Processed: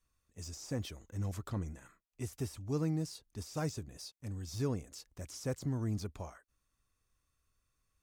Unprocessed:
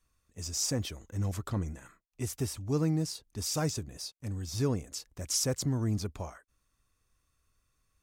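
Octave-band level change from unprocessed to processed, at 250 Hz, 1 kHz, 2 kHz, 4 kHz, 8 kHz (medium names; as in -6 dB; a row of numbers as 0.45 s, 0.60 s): -5.0 dB, -5.0 dB, -5.5 dB, -11.5 dB, -13.5 dB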